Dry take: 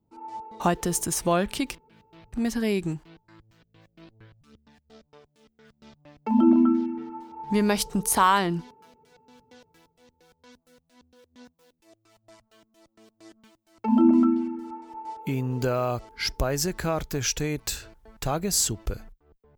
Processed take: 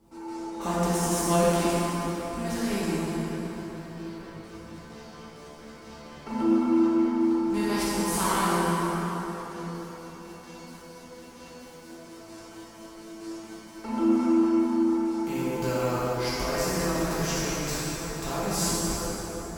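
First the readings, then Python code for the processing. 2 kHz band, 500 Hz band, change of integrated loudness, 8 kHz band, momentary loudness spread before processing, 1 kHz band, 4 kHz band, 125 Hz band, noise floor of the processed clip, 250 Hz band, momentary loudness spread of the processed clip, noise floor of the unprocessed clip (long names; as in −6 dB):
0.0 dB, +1.5 dB, −2.0 dB, −2.0 dB, 18 LU, −1.0 dB, −1.5 dB, 0.0 dB, −46 dBFS, −0.5 dB, 22 LU, −73 dBFS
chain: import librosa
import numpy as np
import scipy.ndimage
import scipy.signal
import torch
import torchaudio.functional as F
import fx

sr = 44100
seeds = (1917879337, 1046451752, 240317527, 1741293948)

y = fx.bin_compress(x, sr, power=0.6)
y = fx.comb_fb(y, sr, f0_hz=170.0, decay_s=0.17, harmonics='all', damping=0.0, mix_pct=80)
y = fx.rev_plate(y, sr, seeds[0], rt60_s=4.4, hf_ratio=0.6, predelay_ms=0, drr_db=-10.0)
y = F.gain(torch.from_numpy(y), -7.0).numpy()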